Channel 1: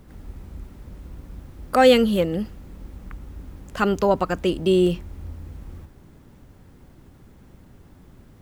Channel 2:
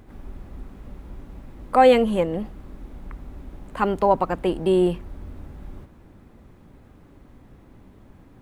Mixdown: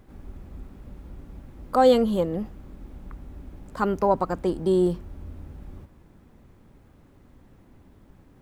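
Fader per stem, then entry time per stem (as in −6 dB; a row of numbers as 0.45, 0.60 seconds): −10.5, −5.5 decibels; 0.00, 0.00 seconds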